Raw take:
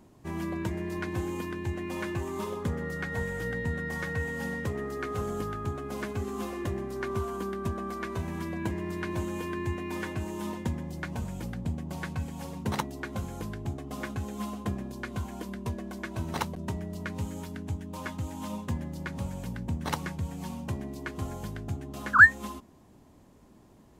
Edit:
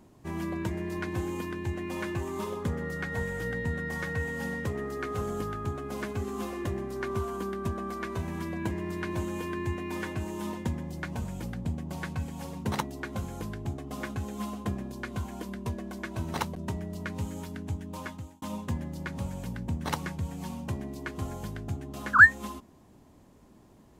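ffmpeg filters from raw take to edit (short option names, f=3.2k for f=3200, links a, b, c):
-filter_complex "[0:a]asplit=2[a][b];[a]atrim=end=18.42,asetpts=PTS-STARTPTS,afade=t=out:st=17.97:d=0.45[c];[b]atrim=start=18.42,asetpts=PTS-STARTPTS,afade=t=in:d=0.004:c=hsin[d];[c][d]concat=n=2:v=0:a=1"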